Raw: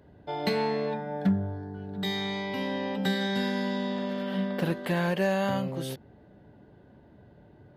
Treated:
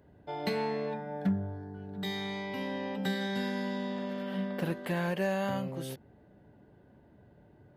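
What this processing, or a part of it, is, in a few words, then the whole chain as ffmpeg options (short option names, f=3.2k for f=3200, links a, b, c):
exciter from parts: -filter_complex "[0:a]asplit=2[a][b];[b]highpass=f=2.7k:w=0.5412,highpass=f=2.7k:w=1.3066,asoftclip=type=tanh:threshold=-36.5dB,highpass=2.5k,volume=-10dB[c];[a][c]amix=inputs=2:normalize=0,volume=-4.5dB"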